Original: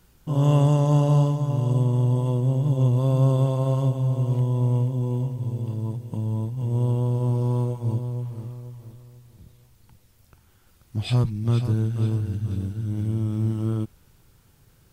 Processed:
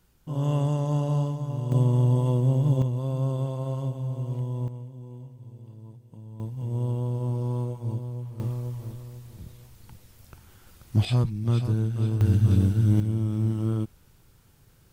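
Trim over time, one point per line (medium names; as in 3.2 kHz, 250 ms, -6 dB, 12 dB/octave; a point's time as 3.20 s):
-6.5 dB
from 1.72 s 0 dB
from 2.82 s -7.5 dB
from 4.68 s -16.5 dB
from 6.40 s -5 dB
from 8.40 s +6 dB
from 11.05 s -2 dB
from 12.21 s +7.5 dB
from 13.00 s -1 dB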